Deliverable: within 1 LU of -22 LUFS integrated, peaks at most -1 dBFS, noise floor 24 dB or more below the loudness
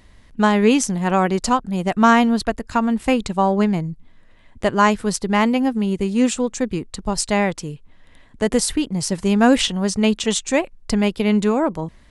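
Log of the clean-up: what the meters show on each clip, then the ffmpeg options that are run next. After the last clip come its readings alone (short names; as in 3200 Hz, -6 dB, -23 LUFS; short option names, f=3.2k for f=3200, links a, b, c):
loudness -19.0 LUFS; peak -1.5 dBFS; loudness target -22.0 LUFS
-> -af "volume=-3dB"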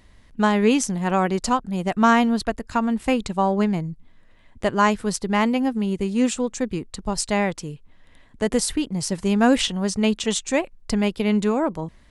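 loudness -22.0 LUFS; peak -4.5 dBFS; noise floor -52 dBFS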